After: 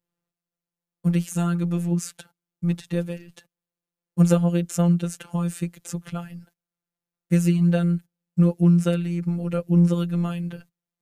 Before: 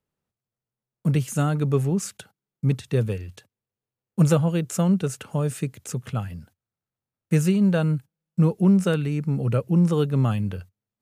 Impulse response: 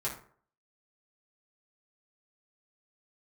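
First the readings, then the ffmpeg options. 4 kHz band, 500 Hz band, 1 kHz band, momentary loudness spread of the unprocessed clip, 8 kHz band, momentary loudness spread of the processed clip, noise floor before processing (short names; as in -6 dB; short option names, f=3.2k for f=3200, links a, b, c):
-2.0 dB, -2.5 dB, -3.0 dB, 12 LU, -1.5 dB, 14 LU, under -85 dBFS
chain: -af "afftfilt=real='hypot(re,im)*cos(PI*b)':imag='0':win_size=1024:overlap=0.75,adynamicequalizer=threshold=0.00501:dfrequency=930:dqfactor=1.7:tfrequency=930:tqfactor=1.7:attack=5:release=100:ratio=0.375:range=3.5:mode=cutabove:tftype=bell,volume=2dB"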